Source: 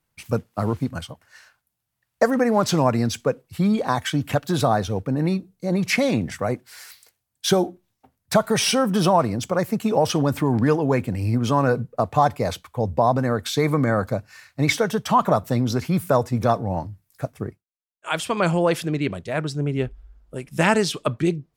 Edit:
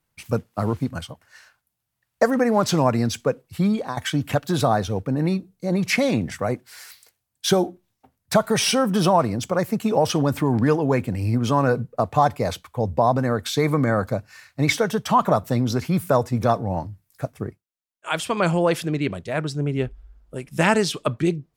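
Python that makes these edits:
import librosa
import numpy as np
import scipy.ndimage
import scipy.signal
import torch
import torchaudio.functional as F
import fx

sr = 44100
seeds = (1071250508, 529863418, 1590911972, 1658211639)

y = fx.edit(x, sr, fx.fade_out_to(start_s=3.65, length_s=0.32, floor_db=-11.0), tone=tone)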